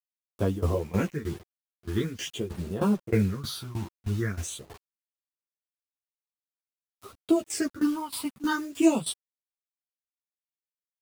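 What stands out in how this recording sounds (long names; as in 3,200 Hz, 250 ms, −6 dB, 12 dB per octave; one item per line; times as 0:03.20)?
phaser sweep stages 6, 0.46 Hz, lowest notch 450–2,000 Hz
a quantiser's noise floor 8 bits, dither none
tremolo saw down 3.2 Hz, depth 90%
a shimmering, thickened sound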